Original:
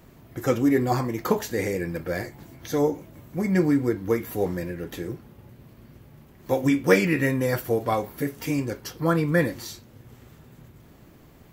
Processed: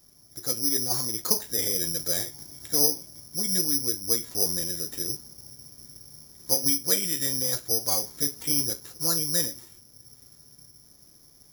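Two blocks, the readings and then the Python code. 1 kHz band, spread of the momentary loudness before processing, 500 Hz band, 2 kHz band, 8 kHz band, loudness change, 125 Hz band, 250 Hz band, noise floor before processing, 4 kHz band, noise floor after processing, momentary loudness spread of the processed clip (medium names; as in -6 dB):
-11.0 dB, 15 LU, -11.5 dB, -12.5 dB, +16.5 dB, +0.5 dB, -11.5 dB, -12.0 dB, -52 dBFS, +12.5 dB, -56 dBFS, 20 LU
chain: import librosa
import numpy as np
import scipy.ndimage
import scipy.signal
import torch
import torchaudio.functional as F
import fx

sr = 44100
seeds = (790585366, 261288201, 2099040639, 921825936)

y = fx.rider(x, sr, range_db=4, speed_s=0.5)
y = (np.kron(scipy.signal.resample_poly(y, 1, 8), np.eye(8)[0]) * 8)[:len(y)]
y = y * librosa.db_to_amplitude(-11.5)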